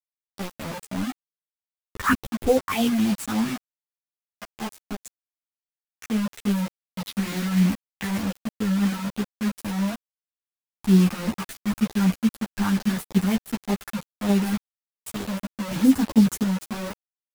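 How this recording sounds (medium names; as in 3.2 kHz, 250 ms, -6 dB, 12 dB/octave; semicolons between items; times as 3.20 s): phasing stages 4, 3.3 Hz, lowest notch 460–2000 Hz; random-step tremolo 1.4 Hz, depth 90%; a quantiser's noise floor 6-bit, dither none; a shimmering, thickened sound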